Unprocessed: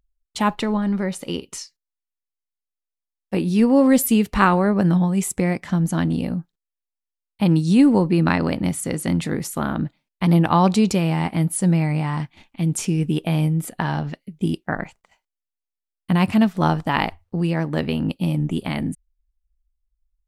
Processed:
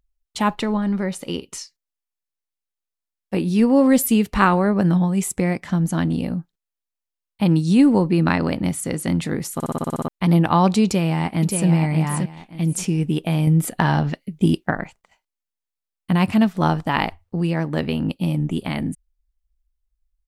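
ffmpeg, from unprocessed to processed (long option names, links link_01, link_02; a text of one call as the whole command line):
ffmpeg -i in.wav -filter_complex "[0:a]asplit=2[link_01][link_02];[link_02]afade=type=in:start_time=10.84:duration=0.01,afade=type=out:start_time=11.67:duration=0.01,aecho=0:1:580|1160|1740:0.530884|0.132721|0.0331803[link_03];[link_01][link_03]amix=inputs=2:normalize=0,asettb=1/sr,asplit=3[link_04][link_05][link_06];[link_04]atrim=end=13.474[link_07];[link_05]atrim=start=13.47:end=14.71,asetpts=PTS-STARTPTS,afade=type=in:duration=0.004:curve=qsin,afade=type=out:start_time=1.236:duration=0.004:curve=qsin,acontrast=36[link_08];[link_06]atrim=start=14.706[link_09];[link_07][link_08]acrossfade=duration=0.004:curve1=hsin:curve2=qsin[link_10];[link_10][link_09]acrossfade=duration=0.004:curve1=qsin:curve2=hsin,asplit=10[link_11][link_12][link_13][link_14][link_15][link_16][link_17][link_18][link_19][link_20];[link_11]atrim=end=9.602[link_21];[link_12]atrim=start=9.538:end=9.602[link_22];[link_13]atrim=start=9.538:end=9.602[link_23];[link_14]atrim=start=9.538:end=9.602[link_24];[link_15]atrim=start=9.538:end=9.602[link_25];[link_16]atrim=start=9.538:end=9.602[link_26];[link_17]atrim=start=9.538:end=9.602[link_27];[link_18]atrim=start=9.538:end=9.602[link_28];[link_19]atrim=start=9.538:end=9.602[link_29];[link_20]atrim=start=10.078[link_30];[link_21][link_22]acrossfade=duration=0.004:curve1=hsin:curve2=hsin[link_31];[link_31][link_23]acrossfade=duration=0.004:curve1=hsin:curve2=hsin[link_32];[link_32][link_24]acrossfade=duration=0.004:curve1=hsin:curve2=hsin[link_33];[link_33][link_25]acrossfade=duration=0.004:curve1=hsin:curve2=hsin[link_34];[link_34][link_26]acrossfade=duration=0.004:curve1=hsin:curve2=hsin[link_35];[link_35][link_27]acrossfade=duration=0.004:curve1=hsin:curve2=hsin[link_36];[link_36][link_28]acrossfade=duration=0.004:curve1=hsin:curve2=hsin[link_37];[link_37][link_29]acrossfade=duration=0.004:curve1=hsin:curve2=hsin[link_38];[link_38][link_30]acrossfade=duration=0.004:curve1=hsin:curve2=hsin" out.wav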